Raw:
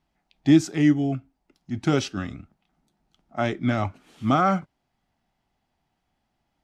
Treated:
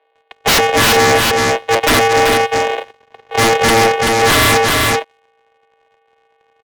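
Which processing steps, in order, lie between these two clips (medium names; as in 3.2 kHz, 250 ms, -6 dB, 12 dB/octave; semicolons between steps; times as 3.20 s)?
sorted samples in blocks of 128 samples; peaking EQ 1.2 kHz -11.5 dB 0.43 oct; in parallel at -2.5 dB: compression, threshold -26 dBFS, peak gain reduction 13.5 dB; on the sum: mistuned SSB +110 Hz 390–3400 Hz; sine folder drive 20 dB, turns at -7 dBFS; on a send: delay 383 ms -5.5 dB; on the sum: waveshaping leveller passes 2; tape noise reduction on one side only decoder only; trim -4 dB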